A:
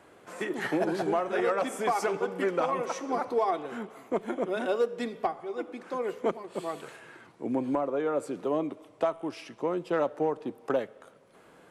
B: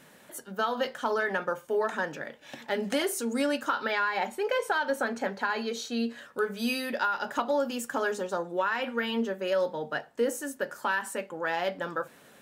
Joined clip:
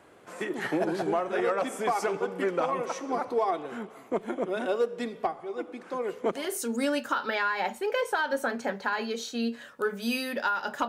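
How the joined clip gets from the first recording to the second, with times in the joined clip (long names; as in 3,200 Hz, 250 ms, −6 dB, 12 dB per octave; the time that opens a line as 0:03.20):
A
0:06.43: continue with B from 0:03.00, crossfade 0.30 s linear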